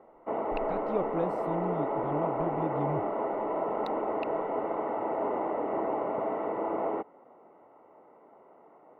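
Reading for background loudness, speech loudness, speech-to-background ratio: -31.5 LUFS, -36.0 LUFS, -4.5 dB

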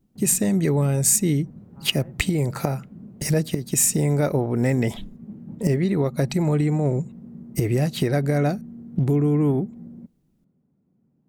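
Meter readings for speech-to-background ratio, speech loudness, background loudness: 20.0 dB, -22.0 LUFS, -42.0 LUFS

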